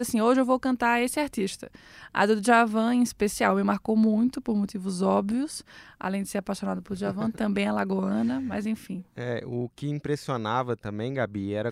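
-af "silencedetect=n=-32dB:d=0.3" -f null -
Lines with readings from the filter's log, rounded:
silence_start: 1.67
silence_end: 2.15 | silence_duration: 0.48
silence_start: 5.59
silence_end: 6.01 | silence_duration: 0.42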